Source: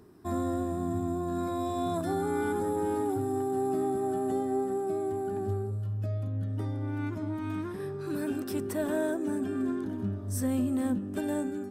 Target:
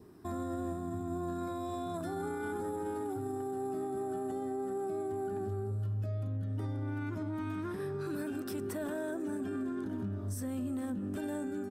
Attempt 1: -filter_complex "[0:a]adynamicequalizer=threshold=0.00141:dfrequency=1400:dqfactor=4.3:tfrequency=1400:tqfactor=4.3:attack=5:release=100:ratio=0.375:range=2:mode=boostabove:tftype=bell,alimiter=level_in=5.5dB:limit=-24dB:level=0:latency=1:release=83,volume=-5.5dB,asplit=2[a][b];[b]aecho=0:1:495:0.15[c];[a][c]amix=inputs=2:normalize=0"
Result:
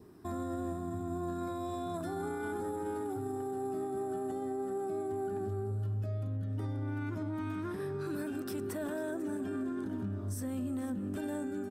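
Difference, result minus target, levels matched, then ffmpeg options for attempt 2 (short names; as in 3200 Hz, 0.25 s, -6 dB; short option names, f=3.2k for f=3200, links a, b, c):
echo-to-direct +7.5 dB
-filter_complex "[0:a]adynamicequalizer=threshold=0.00141:dfrequency=1400:dqfactor=4.3:tfrequency=1400:tqfactor=4.3:attack=5:release=100:ratio=0.375:range=2:mode=boostabove:tftype=bell,alimiter=level_in=5.5dB:limit=-24dB:level=0:latency=1:release=83,volume=-5.5dB,asplit=2[a][b];[b]aecho=0:1:495:0.0631[c];[a][c]amix=inputs=2:normalize=0"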